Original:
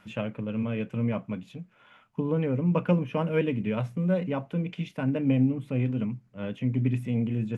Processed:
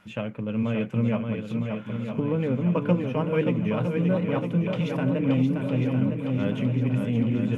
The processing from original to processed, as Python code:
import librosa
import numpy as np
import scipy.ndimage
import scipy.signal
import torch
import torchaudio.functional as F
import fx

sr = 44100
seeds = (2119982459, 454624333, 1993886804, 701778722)

y = fx.recorder_agc(x, sr, target_db=-17.0, rise_db_per_s=8.6, max_gain_db=30)
y = fx.echo_swing(y, sr, ms=958, ratio=1.5, feedback_pct=56, wet_db=-5.5)